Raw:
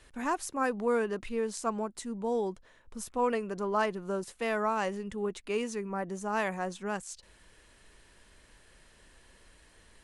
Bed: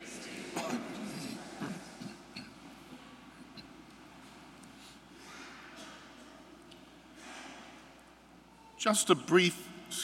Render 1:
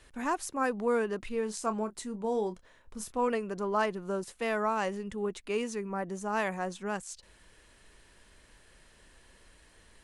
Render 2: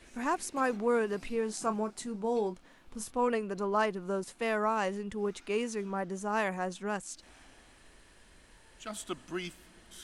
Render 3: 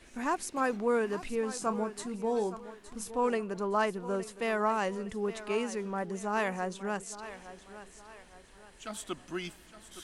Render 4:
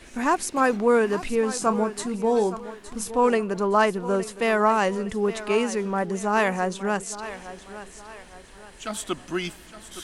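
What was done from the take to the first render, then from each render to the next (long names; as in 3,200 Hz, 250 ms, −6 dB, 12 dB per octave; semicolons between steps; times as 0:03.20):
0:01.28–0:03.28: double-tracking delay 28 ms −11 dB
mix in bed −12.5 dB
feedback echo with a high-pass in the loop 865 ms, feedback 42%, high-pass 200 Hz, level −13.5 dB
level +9 dB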